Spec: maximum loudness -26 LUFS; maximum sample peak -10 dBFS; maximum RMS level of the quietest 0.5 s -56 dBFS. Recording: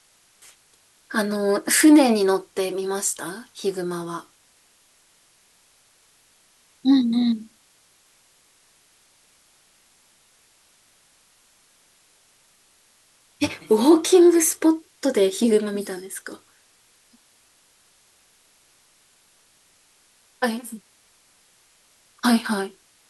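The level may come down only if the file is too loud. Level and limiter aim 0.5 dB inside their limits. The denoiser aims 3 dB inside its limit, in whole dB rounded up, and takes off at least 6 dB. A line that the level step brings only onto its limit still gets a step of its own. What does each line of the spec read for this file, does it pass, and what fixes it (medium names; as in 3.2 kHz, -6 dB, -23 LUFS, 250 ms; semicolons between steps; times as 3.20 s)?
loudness -20.5 LUFS: fail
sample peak -4.0 dBFS: fail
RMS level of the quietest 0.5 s -59 dBFS: pass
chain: trim -6 dB; peak limiter -10.5 dBFS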